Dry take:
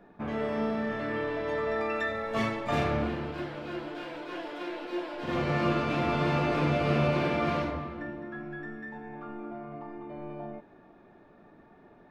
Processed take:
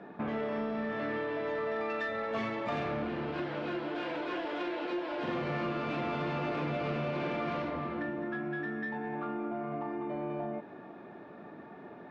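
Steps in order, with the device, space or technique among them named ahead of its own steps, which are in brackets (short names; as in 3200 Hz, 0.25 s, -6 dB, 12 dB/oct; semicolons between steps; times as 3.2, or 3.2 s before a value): AM radio (BPF 140–4100 Hz; compressor 4:1, threshold -40 dBFS, peak gain reduction 14 dB; soft clip -33.5 dBFS, distortion -21 dB); gain +8 dB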